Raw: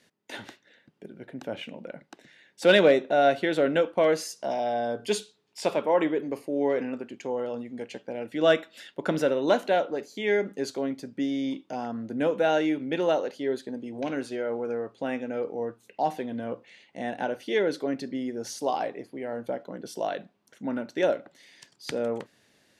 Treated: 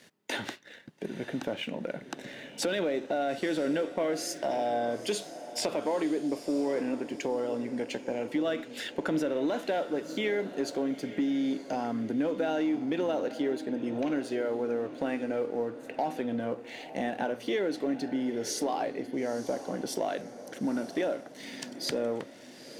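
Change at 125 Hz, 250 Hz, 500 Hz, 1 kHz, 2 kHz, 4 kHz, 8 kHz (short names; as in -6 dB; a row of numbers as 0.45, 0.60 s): -3.5, 0.0, -5.0, -5.0, -5.5, -3.0, +2.5 dB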